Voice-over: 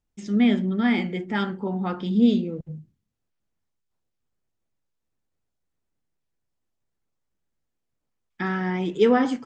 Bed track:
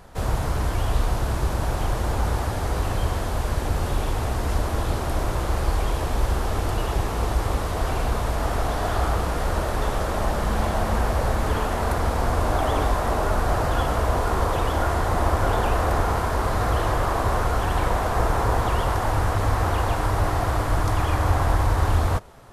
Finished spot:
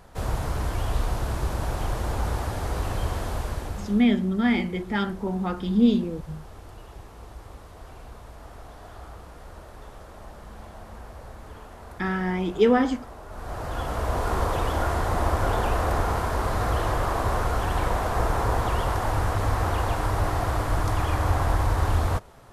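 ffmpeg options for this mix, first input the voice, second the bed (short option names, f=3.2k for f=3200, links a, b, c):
-filter_complex "[0:a]adelay=3600,volume=-0.5dB[a];[1:a]volume=13.5dB,afade=t=out:st=3.32:d=0.74:silence=0.158489,afade=t=in:st=13.28:d=1.05:silence=0.141254[b];[a][b]amix=inputs=2:normalize=0"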